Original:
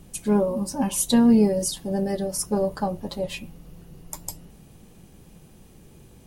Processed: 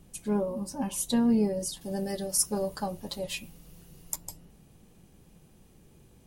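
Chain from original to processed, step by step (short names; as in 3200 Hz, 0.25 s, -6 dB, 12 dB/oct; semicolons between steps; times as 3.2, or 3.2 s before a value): 1.81–4.16 high shelf 2500 Hz +11 dB; gain -7.5 dB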